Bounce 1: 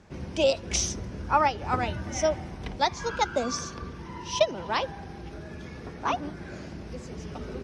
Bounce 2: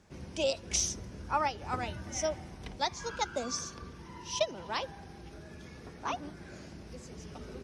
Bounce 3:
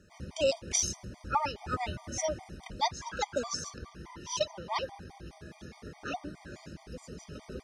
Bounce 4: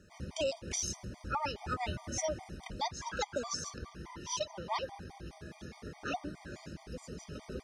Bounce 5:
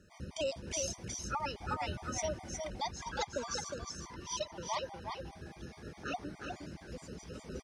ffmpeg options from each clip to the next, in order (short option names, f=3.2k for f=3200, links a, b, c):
-af "highshelf=f=5.9k:g=11.5,volume=-8dB"
-af "afftfilt=real='re*gt(sin(2*PI*4.8*pts/sr)*(1-2*mod(floor(b*sr/1024/620),2)),0)':imag='im*gt(sin(2*PI*4.8*pts/sr)*(1-2*mod(floor(b*sr/1024/620),2)),0)':win_size=1024:overlap=0.75,volume=3.5dB"
-af "alimiter=level_in=0.5dB:limit=-24dB:level=0:latency=1:release=159,volume=-0.5dB"
-af "aecho=1:1:361:0.562,volume=-2dB"